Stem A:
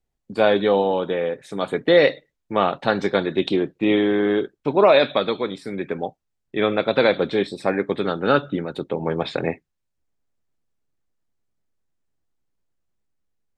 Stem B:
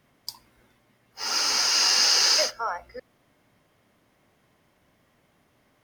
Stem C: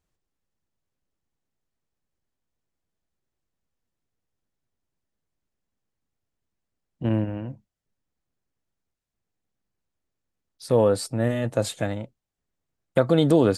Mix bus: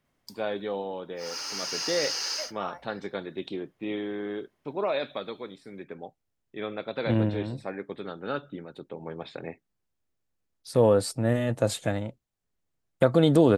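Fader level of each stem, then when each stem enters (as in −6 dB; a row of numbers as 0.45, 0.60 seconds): −14.0, −11.0, −1.0 decibels; 0.00, 0.00, 0.05 seconds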